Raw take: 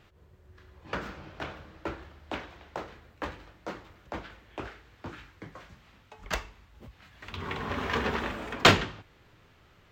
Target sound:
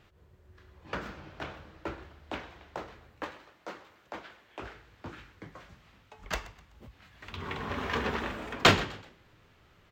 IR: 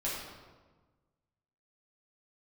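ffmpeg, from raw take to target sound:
-filter_complex "[0:a]asettb=1/sr,asplit=3[link_01][link_02][link_03];[link_01]atrim=end=3.244[link_04];[link_02]atrim=start=3.24:end=4.62,asetpts=PTS-STARTPTS,afade=type=in:duration=0.004:curve=qsin,afade=type=out:start_time=1.376:duration=0.004:curve=qsin,highpass=frequency=410:poles=1[link_05];[link_03]atrim=start=4.616[link_06];[link_04][link_05]acrossfade=duration=0.004:curve1=hsin:curve2=qsin[link_07];[link_07][link_06]acrossfade=duration=0.004:curve1=qsin:curve2=hsin,asplit=4[link_08][link_09][link_10][link_11];[link_09]adelay=126,afreqshift=51,volume=-19dB[link_12];[link_10]adelay=252,afreqshift=102,volume=-27.9dB[link_13];[link_11]adelay=378,afreqshift=153,volume=-36.7dB[link_14];[link_08][link_12][link_13][link_14]amix=inputs=4:normalize=0,volume=-2dB"

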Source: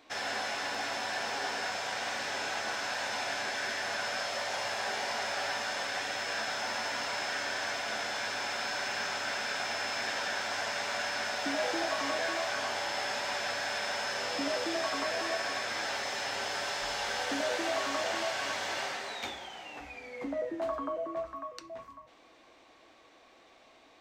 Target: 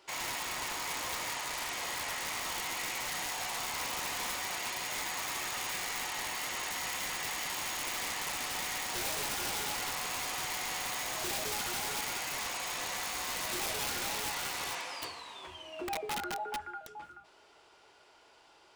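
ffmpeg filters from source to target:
ffmpeg -i in.wav -af "asetrate=56448,aresample=44100,aeval=exprs='(mod(23.7*val(0)+1,2)-1)/23.7':channel_layout=same,volume=-2dB" out.wav

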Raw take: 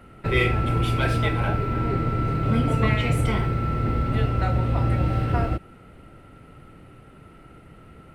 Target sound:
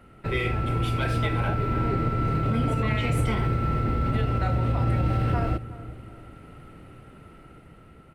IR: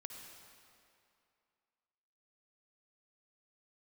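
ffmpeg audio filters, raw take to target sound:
-filter_complex "[0:a]dynaudnorm=framelen=520:gausssize=5:maxgain=5dB,alimiter=limit=-12dB:level=0:latency=1:release=57,asplit=2[link_01][link_02];[link_02]adelay=369,lowpass=frequency=1000:poles=1,volume=-15.5dB,asplit=2[link_03][link_04];[link_04]adelay=369,lowpass=frequency=1000:poles=1,volume=0.42,asplit=2[link_05][link_06];[link_06]adelay=369,lowpass=frequency=1000:poles=1,volume=0.42,asplit=2[link_07][link_08];[link_08]adelay=369,lowpass=frequency=1000:poles=1,volume=0.42[link_09];[link_01][link_03][link_05][link_07][link_09]amix=inputs=5:normalize=0,volume=-4dB"

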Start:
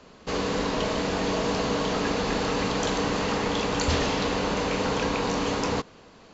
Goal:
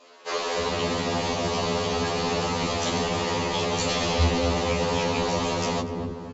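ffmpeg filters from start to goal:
ffmpeg -i in.wav -filter_complex "[0:a]asplit=2[link_01][link_02];[link_02]adelay=242,lowpass=frequency=1300:poles=1,volume=-8.5dB,asplit=2[link_03][link_04];[link_04]adelay=242,lowpass=frequency=1300:poles=1,volume=0.54,asplit=2[link_05][link_06];[link_06]adelay=242,lowpass=frequency=1300:poles=1,volume=0.54,asplit=2[link_07][link_08];[link_08]adelay=242,lowpass=frequency=1300:poles=1,volume=0.54,asplit=2[link_09][link_10];[link_10]adelay=242,lowpass=frequency=1300:poles=1,volume=0.54,asplit=2[link_11][link_12];[link_12]adelay=242,lowpass=frequency=1300:poles=1,volume=0.54[link_13];[link_03][link_05][link_07][link_09][link_11][link_13]amix=inputs=6:normalize=0[link_14];[link_01][link_14]amix=inputs=2:normalize=0,adynamicequalizer=threshold=0.00355:dfrequency=1500:dqfactor=2.4:tfrequency=1500:tqfactor=2.4:attack=5:release=100:ratio=0.375:range=4:mode=cutabove:tftype=bell,acrossover=split=360[link_15][link_16];[link_15]adelay=320[link_17];[link_17][link_16]amix=inputs=2:normalize=0,afftfilt=real='re*2*eq(mod(b,4),0)':imag='im*2*eq(mod(b,4),0)':win_size=2048:overlap=0.75,volume=5dB" out.wav

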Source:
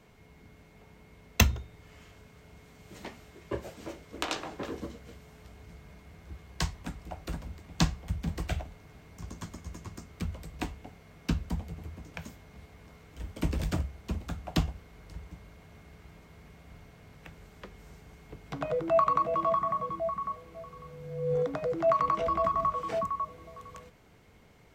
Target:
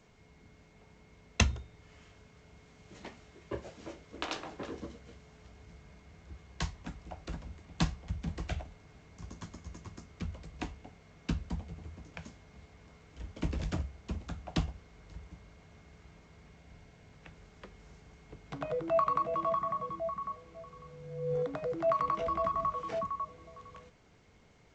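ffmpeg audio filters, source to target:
ffmpeg -i in.wav -filter_complex "[0:a]asettb=1/sr,asplit=3[link_01][link_02][link_03];[link_01]atrim=end=16.584[link_04];[link_02]atrim=start=16.58:end=17.13,asetpts=PTS-STARTPTS,afade=type=in:duration=0.004:curve=qsin,afade=type=out:start_time=0.546:duration=0.004:curve=qsin,bandreject=frequency=1200:width=7.7[link_05];[link_03]atrim=start=17.126[link_06];[link_04][link_05]acrossfade=duration=0.004:curve1=hsin:curve2=qsin[link_07];[link_07][link_06]acrossfade=duration=0.004:curve1=qsin:curve2=hsin,volume=-4dB" -ar 16000 -c:a g722 out.g722

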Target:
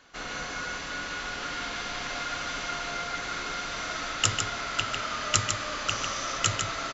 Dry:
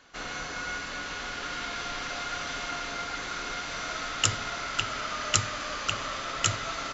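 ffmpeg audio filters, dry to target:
ffmpeg -i in.wav -filter_complex "[0:a]asettb=1/sr,asplit=3[link_01][link_02][link_03];[link_01]atrim=end=5.904[link_04];[link_02]atrim=start=5.9:end=6.38,asetpts=PTS-STARTPTS,afade=type=in:duration=0.004:curve=qsin,afade=type=out:start_time=0.476:duration=0.004:curve=qsin,equalizer=frequency=5900:width_type=o:width=0.41:gain=9.5[link_05];[link_03]atrim=start=6.376[link_06];[link_04][link_05]acrossfade=duration=0.004:curve1=hsin:curve2=qsin[link_07];[link_07][link_06]acrossfade=duration=0.004:curve1=qsin:curve2=hsin,aecho=1:1:149:0.501" out.wav

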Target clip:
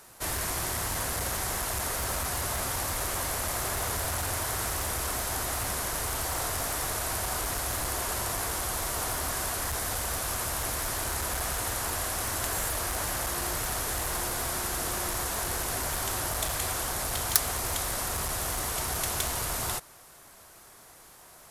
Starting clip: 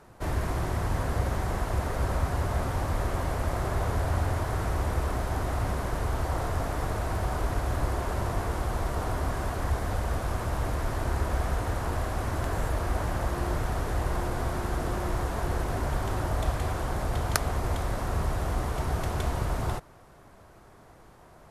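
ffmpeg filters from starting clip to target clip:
ffmpeg -i in.wav -af "volume=22dB,asoftclip=hard,volume=-22dB,lowshelf=frequency=240:gain=-5.5,crystalizer=i=8:c=0,volume=-4dB" out.wav

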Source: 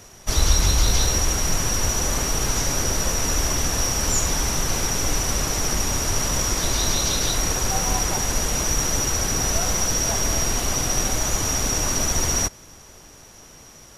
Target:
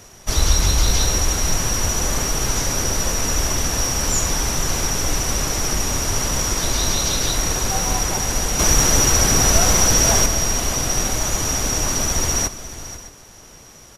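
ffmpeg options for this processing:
ffmpeg -i in.wav -filter_complex "[0:a]asplit=2[link_01][link_02];[link_02]aecho=0:1:616:0.112[link_03];[link_01][link_03]amix=inputs=2:normalize=0,asettb=1/sr,asplit=3[link_04][link_05][link_06];[link_04]atrim=end=8.594[link_07];[link_05]atrim=start=8.59:end=10.26,asetpts=PTS-STARTPTS,afade=type=in:duration=0.004:curve=qsin,afade=type=out:start_time=1.666:duration=0.004:curve=qsin,acontrast=43[link_08];[link_06]atrim=start=10.256[link_09];[link_07][link_08]acrossfade=duration=0.004:curve1=hsin:curve2=qsin[link_10];[link_10][link_09]acrossfade=duration=0.004:curve1=qsin:curve2=hsin,asplit=2[link_11][link_12];[link_12]aecho=0:1:488:0.188[link_13];[link_11][link_13]amix=inputs=2:normalize=0,volume=1.5dB" out.wav

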